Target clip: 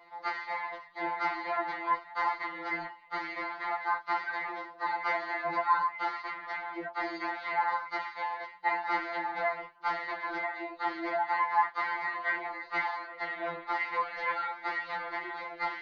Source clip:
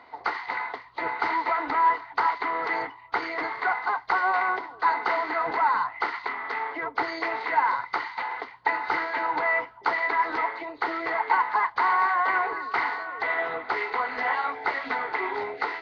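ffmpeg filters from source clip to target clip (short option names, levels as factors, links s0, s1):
-af "flanger=delay=17.5:depth=3.9:speed=2.5,afftfilt=real='re*2.83*eq(mod(b,8),0)':imag='im*2.83*eq(mod(b,8),0)':win_size=2048:overlap=0.75"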